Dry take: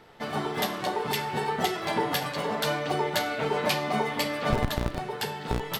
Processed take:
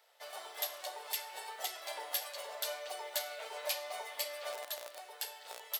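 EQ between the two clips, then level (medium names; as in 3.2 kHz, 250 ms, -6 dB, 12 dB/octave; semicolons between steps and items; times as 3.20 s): resonant high-pass 580 Hz, resonance Q 4.9; differentiator; -3.0 dB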